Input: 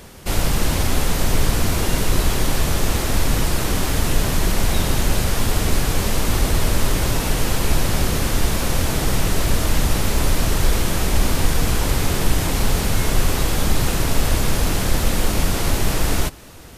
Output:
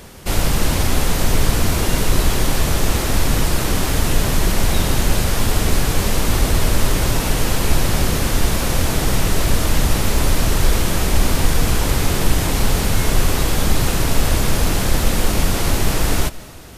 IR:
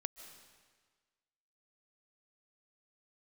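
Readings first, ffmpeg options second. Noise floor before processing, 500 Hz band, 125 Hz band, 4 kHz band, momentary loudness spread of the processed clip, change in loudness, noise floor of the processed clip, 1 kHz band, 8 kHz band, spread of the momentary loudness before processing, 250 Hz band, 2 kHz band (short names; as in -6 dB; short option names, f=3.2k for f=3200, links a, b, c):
-23 dBFS, +2.0 dB, +2.0 dB, +2.0 dB, 1 LU, +2.0 dB, -21 dBFS, +2.0 dB, +2.0 dB, 1 LU, +2.0 dB, +2.0 dB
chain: -filter_complex "[0:a]asplit=2[a][b];[1:a]atrim=start_sample=2205[c];[b][c]afir=irnorm=-1:irlink=0,volume=-4dB[d];[a][d]amix=inputs=2:normalize=0,volume=-1.5dB"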